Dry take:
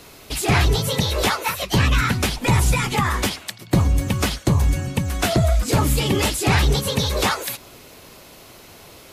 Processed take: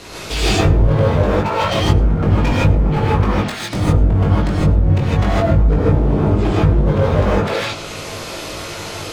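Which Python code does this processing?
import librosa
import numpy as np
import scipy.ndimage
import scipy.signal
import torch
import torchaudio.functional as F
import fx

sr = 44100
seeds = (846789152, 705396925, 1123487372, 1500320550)

y = scipy.signal.sosfilt(scipy.signal.butter(2, 8200.0, 'lowpass', fs=sr, output='sos'), x)
y = fx.hum_notches(y, sr, base_hz=60, count=5)
y = fx.env_lowpass_down(y, sr, base_hz=300.0, full_db=-15.5)
y = fx.rider(y, sr, range_db=4, speed_s=2.0)
y = np.clip(y, -10.0 ** (-25.0 / 20.0), 10.0 ** (-25.0 / 20.0))
y = fx.doubler(y, sr, ms=20.0, db=-4.0)
y = y + 10.0 ** (-23.0 / 20.0) * np.pad(y, (int(106 * sr / 1000.0), 0))[:len(y)]
y = fx.rev_gated(y, sr, seeds[0], gate_ms=180, shape='rising', drr_db=-7.0)
y = y * librosa.db_to_amplitude(4.5)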